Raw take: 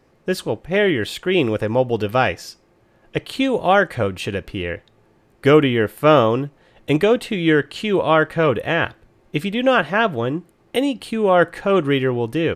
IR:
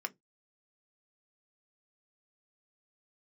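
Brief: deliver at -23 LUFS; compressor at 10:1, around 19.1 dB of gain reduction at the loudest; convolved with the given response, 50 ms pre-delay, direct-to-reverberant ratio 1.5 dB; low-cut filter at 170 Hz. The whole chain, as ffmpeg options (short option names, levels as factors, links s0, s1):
-filter_complex "[0:a]highpass=170,acompressor=threshold=0.0447:ratio=10,asplit=2[s0][s1];[1:a]atrim=start_sample=2205,adelay=50[s2];[s1][s2]afir=irnorm=-1:irlink=0,volume=0.708[s3];[s0][s3]amix=inputs=2:normalize=0,volume=2.37"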